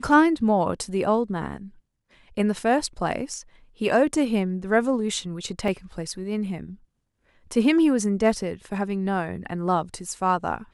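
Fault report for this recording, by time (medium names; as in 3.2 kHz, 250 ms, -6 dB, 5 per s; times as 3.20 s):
5.68 s: dropout 2 ms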